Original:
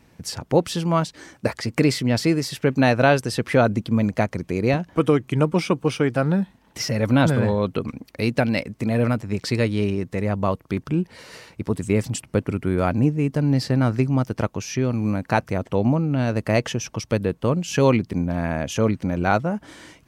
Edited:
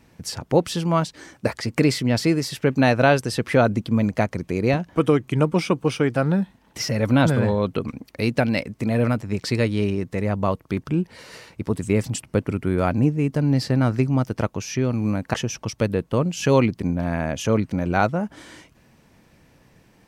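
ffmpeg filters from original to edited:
ffmpeg -i in.wav -filter_complex "[0:a]asplit=2[link_01][link_02];[link_01]atrim=end=15.342[link_03];[link_02]atrim=start=16.648[link_04];[link_03][link_04]acrossfade=duration=0.004:curve1=hsin:curve2=hsin" out.wav

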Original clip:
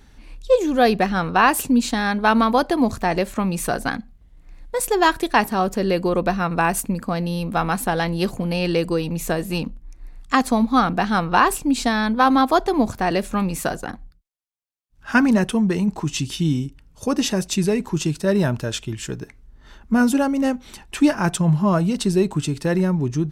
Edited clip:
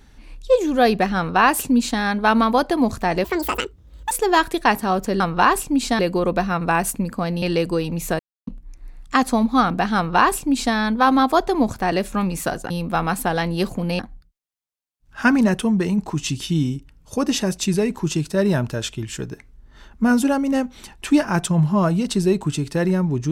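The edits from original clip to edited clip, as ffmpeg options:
ffmpeg -i in.wav -filter_complex "[0:a]asplit=10[link_01][link_02][link_03][link_04][link_05][link_06][link_07][link_08][link_09][link_10];[link_01]atrim=end=3.244[link_11];[link_02]atrim=start=3.24:end=4.8,asetpts=PTS-STARTPTS,asetrate=78939,aresample=44100[link_12];[link_03]atrim=start=4.796:end=5.892[link_13];[link_04]atrim=start=11.148:end=11.942[link_14];[link_05]atrim=start=5.888:end=7.322[link_15];[link_06]atrim=start=8.608:end=9.38,asetpts=PTS-STARTPTS,afade=type=out:start_time=0.768:duration=0.004:curve=hsin[link_16];[link_07]atrim=start=9.38:end=9.66,asetpts=PTS-STARTPTS,volume=0[link_17];[link_08]atrim=start=9.66:end=13.892,asetpts=PTS-STARTPTS,afade=type=in:duration=0.004:curve=hsin[link_18];[link_09]atrim=start=7.318:end=8.612[link_19];[link_10]atrim=start=13.888[link_20];[link_11][link_12]acrossfade=duration=0.004:curve1=hsin:curve2=hsin[link_21];[link_21][link_13]acrossfade=duration=0.004:curve1=hsin:curve2=hsin[link_22];[link_22][link_14]acrossfade=duration=0.004:curve1=hsin:curve2=hsin[link_23];[link_23][link_15]acrossfade=duration=0.004:curve1=hsin:curve2=hsin[link_24];[link_16][link_17][link_18]concat=n=3:v=0:a=1[link_25];[link_24][link_25]acrossfade=duration=0.004:curve1=hsin:curve2=hsin[link_26];[link_26][link_19]acrossfade=duration=0.004:curve1=hsin:curve2=hsin[link_27];[link_27][link_20]acrossfade=duration=0.004:curve1=hsin:curve2=hsin" out.wav

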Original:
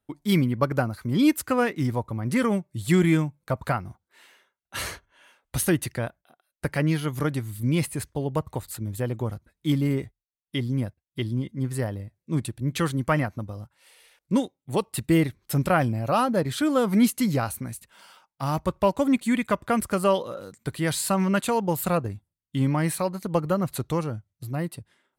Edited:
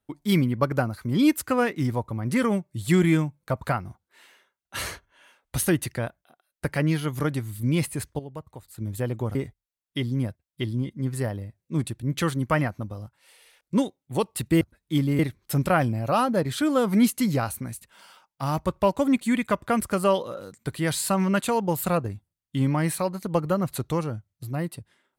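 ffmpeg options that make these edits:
ffmpeg -i in.wav -filter_complex "[0:a]asplit=6[link_01][link_02][link_03][link_04][link_05][link_06];[link_01]atrim=end=8.192[link_07];[link_02]atrim=start=8.188:end=8.782,asetpts=PTS-STARTPTS,volume=-11.5dB[link_08];[link_03]atrim=start=8.778:end=9.352[link_09];[link_04]atrim=start=9.928:end=15.192[link_10];[link_05]atrim=start=9.348:end=9.932[link_11];[link_06]atrim=start=15.188[link_12];[link_07][link_08]acrossfade=duration=0.004:curve1=hsin:curve2=hsin[link_13];[link_13][link_09]acrossfade=duration=0.004:curve1=hsin:curve2=hsin[link_14];[link_14][link_10]acrossfade=duration=0.004:curve1=hsin:curve2=hsin[link_15];[link_15][link_11]acrossfade=duration=0.004:curve1=hsin:curve2=hsin[link_16];[link_16][link_12]acrossfade=duration=0.004:curve1=hsin:curve2=hsin" out.wav

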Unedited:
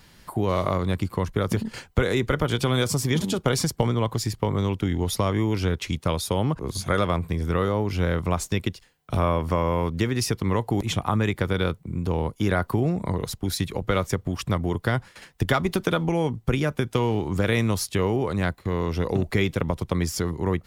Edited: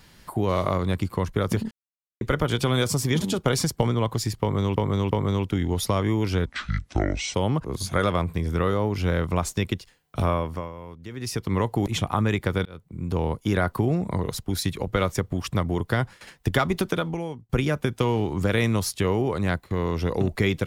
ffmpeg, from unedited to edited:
ffmpeg -i in.wav -filter_complex "[0:a]asplit=11[link_01][link_02][link_03][link_04][link_05][link_06][link_07][link_08][link_09][link_10][link_11];[link_01]atrim=end=1.71,asetpts=PTS-STARTPTS,afade=type=out:start_time=1.706:duration=0.004:curve=hsin[link_12];[link_02]atrim=start=1.71:end=2.21,asetpts=PTS-STARTPTS,volume=0[link_13];[link_03]atrim=start=2.21:end=4.762,asetpts=PTS-STARTPTS,afade=type=in:duration=0.004:curve=hsin[link_14];[link_04]atrim=start=4.408:end=4.762[link_15];[link_05]atrim=start=4.408:end=5.764[link_16];[link_06]atrim=start=5.76:end=6.29,asetpts=PTS-STARTPTS,asetrate=26460,aresample=44100[link_17];[link_07]atrim=start=6.286:end=9.67,asetpts=PTS-STARTPTS,afade=type=out:start_time=2.904:duration=0.48:silence=0.158489[link_18];[link_08]atrim=start=9.67:end=10.02,asetpts=PTS-STARTPTS,volume=-16dB[link_19];[link_09]atrim=start=10.02:end=11.6,asetpts=PTS-STARTPTS,afade=type=in:duration=0.48:silence=0.158489,afade=type=out:start_time=1.576:duration=0.004:curve=hsin[link_20];[link_10]atrim=start=11.6:end=16.44,asetpts=PTS-STARTPTS,afade=type=in:duration=0.5,afade=type=out:start_time=4.14:duration=0.7:silence=0.0794328[link_21];[link_11]atrim=start=16.44,asetpts=PTS-STARTPTS,afade=type=in:duration=0.004:curve=hsin:silence=0.0794328[link_22];[link_12][link_13][link_14]concat=n=3:v=0:a=1[link_23];[link_23][link_15]acrossfade=duration=0.004:curve1=hsin:curve2=hsin[link_24];[link_24][link_16]acrossfade=duration=0.004:curve1=hsin:curve2=hsin[link_25];[link_25][link_17]acrossfade=duration=0.004:curve1=hsin:curve2=hsin[link_26];[link_18][link_19][link_20][link_21][link_22]concat=n=5:v=0:a=1[link_27];[link_26][link_27]acrossfade=duration=0.004:curve1=hsin:curve2=hsin" out.wav

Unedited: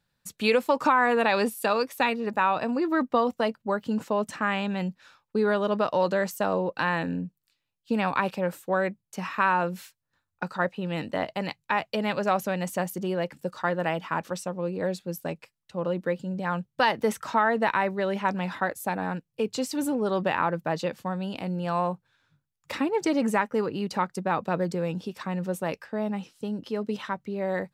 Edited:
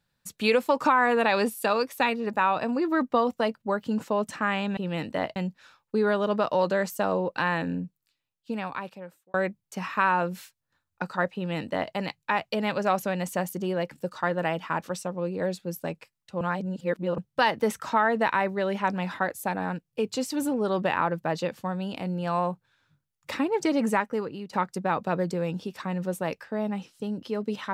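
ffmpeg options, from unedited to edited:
ffmpeg -i in.wav -filter_complex "[0:a]asplit=7[link_01][link_02][link_03][link_04][link_05][link_06][link_07];[link_01]atrim=end=4.772[link_08];[link_02]atrim=start=10.758:end=11.352[link_09];[link_03]atrim=start=4.768:end=8.75,asetpts=PTS-STARTPTS,afade=type=out:start_time=2.422:duration=1.56[link_10];[link_04]atrim=start=8.75:end=15.822,asetpts=PTS-STARTPTS,afade=type=in:duration=0.004:curve=hsin[link_11];[link_05]atrim=start=15.818:end=16.592,asetpts=PTS-STARTPTS,areverse[link_12];[link_06]atrim=start=16.588:end=23.94,asetpts=PTS-STARTPTS,afade=type=out:start_time=6.772:duration=0.58:silence=0.266073[link_13];[link_07]atrim=start=23.94,asetpts=PTS-STARTPTS,afade=type=in:duration=0.004:curve=hsin:silence=0.266073[link_14];[link_08][link_09]acrossfade=duration=0.004:curve1=hsin:curve2=hsin[link_15];[link_10][link_11]concat=n=2:v=0:a=1[link_16];[link_15][link_16]acrossfade=duration=0.004:curve1=hsin:curve2=hsin[link_17];[link_17][link_12]acrossfade=duration=0.004:curve1=hsin:curve2=hsin[link_18];[link_13][link_14]concat=n=2:v=0:a=1[link_19];[link_18][link_19]acrossfade=duration=0.004:curve1=hsin:curve2=hsin" out.wav

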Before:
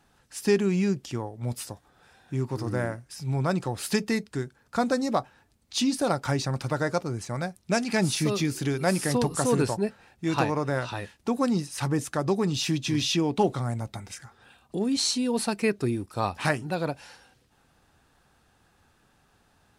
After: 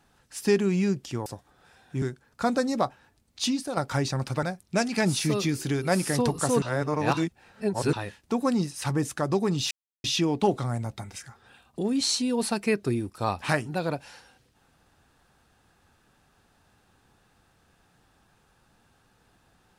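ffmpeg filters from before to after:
ffmpeg -i in.wav -filter_complex "[0:a]asplit=9[link_01][link_02][link_03][link_04][link_05][link_06][link_07][link_08][link_09];[link_01]atrim=end=1.262[link_10];[link_02]atrim=start=1.638:end=2.402[link_11];[link_03]atrim=start=4.358:end=6.11,asetpts=PTS-STARTPTS,afade=type=out:start_time=1.432:duration=0.32:curve=qua:silence=0.421697[link_12];[link_04]atrim=start=6.11:end=6.772,asetpts=PTS-STARTPTS,afade=type=in:duration=0.004:curve=hsin:silence=0.421697[link_13];[link_05]atrim=start=7.388:end=9.582[link_14];[link_06]atrim=start=9.578:end=10.892,asetpts=PTS-STARTPTS,areverse[link_15];[link_07]atrim=start=10.888:end=12.67,asetpts=PTS-STARTPTS,afade=type=out:start_time=1.778:duration=0.004:curve=hsin[link_16];[link_08]atrim=start=12.67:end=13,asetpts=PTS-STARTPTS,volume=0[link_17];[link_09]atrim=start=13,asetpts=PTS-STARTPTS,afade=type=in:duration=0.004:curve=hsin[link_18];[link_10][link_11]acrossfade=duration=0.004:curve1=hsin:curve2=hsin[link_19];[link_12][link_13]concat=n=2:v=0:a=1[link_20];[link_19][link_20]acrossfade=duration=0.004:curve1=hsin:curve2=hsin[link_21];[link_21][link_14]acrossfade=duration=0.004:curve1=hsin:curve2=hsin[link_22];[link_22][link_15]acrossfade=duration=0.004:curve1=hsin:curve2=hsin[link_23];[link_16][link_17][link_18]concat=n=3:v=0:a=1[link_24];[link_23][link_24]acrossfade=duration=0.004:curve1=hsin:curve2=hsin" out.wav

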